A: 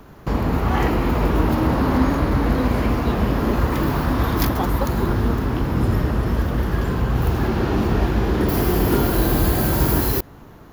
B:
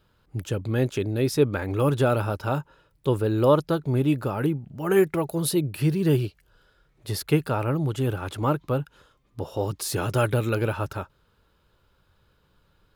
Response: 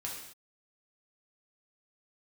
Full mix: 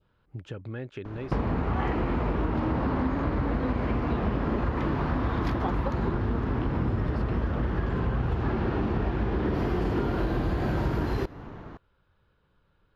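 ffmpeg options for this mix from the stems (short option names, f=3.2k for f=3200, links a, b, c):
-filter_complex "[0:a]adelay=1050,volume=1dB,asplit=2[a][b];[b]volume=-21.5dB[c];[1:a]adynamicequalizer=threshold=0.00631:dfrequency=1700:dqfactor=1.2:tfrequency=1700:tqfactor=1.2:attack=5:release=100:ratio=0.375:range=2.5:mode=boostabove:tftype=bell,acompressor=threshold=-31dB:ratio=4,volume=-4dB[d];[2:a]atrim=start_sample=2205[e];[c][e]afir=irnorm=-1:irlink=0[f];[a][d][f]amix=inputs=3:normalize=0,lowpass=2.9k,acompressor=threshold=-24dB:ratio=6"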